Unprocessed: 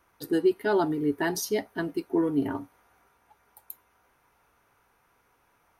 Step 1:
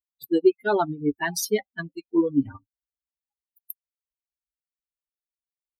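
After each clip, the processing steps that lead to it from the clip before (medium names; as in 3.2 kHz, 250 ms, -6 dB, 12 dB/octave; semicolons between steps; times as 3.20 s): expander on every frequency bin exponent 3; trim +7.5 dB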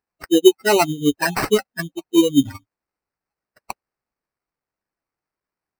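sample-rate reducer 3.4 kHz, jitter 0%; trim +6.5 dB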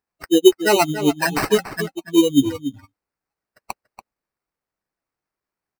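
echo from a far wall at 49 m, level -11 dB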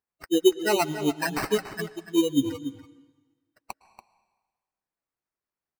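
reverberation RT60 1.3 s, pre-delay 103 ms, DRR 17 dB; trim -7.5 dB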